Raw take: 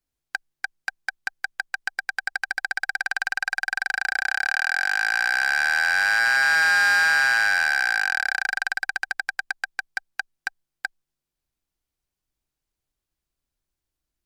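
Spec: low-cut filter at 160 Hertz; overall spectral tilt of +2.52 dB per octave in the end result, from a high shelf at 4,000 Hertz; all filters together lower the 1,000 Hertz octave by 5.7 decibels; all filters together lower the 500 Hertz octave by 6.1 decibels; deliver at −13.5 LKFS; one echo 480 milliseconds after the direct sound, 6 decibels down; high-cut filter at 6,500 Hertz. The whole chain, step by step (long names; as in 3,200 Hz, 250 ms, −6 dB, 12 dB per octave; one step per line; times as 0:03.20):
high-pass filter 160 Hz
low-pass filter 6,500 Hz
parametric band 500 Hz −5 dB
parametric band 1,000 Hz −7.5 dB
high-shelf EQ 4,000 Hz +4.5 dB
single-tap delay 480 ms −6 dB
level +11.5 dB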